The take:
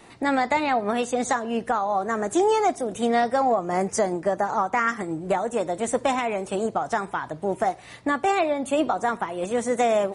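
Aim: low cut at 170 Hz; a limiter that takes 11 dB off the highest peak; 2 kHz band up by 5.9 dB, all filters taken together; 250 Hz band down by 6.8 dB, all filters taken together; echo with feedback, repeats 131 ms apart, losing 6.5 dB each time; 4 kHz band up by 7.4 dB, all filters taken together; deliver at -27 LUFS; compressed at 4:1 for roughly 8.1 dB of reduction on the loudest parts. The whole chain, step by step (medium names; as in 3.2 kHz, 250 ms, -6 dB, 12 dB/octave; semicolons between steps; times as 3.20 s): high-pass 170 Hz; peaking EQ 250 Hz -8 dB; peaking EQ 2 kHz +5.5 dB; peaking EQ 4 kHz +7.5 dB; compression 4:1, threshold -26 dBFS; peak limiter -23 dBFS; feedback delay 131 ms, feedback 47%, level -6.5 dB; trim +5 dB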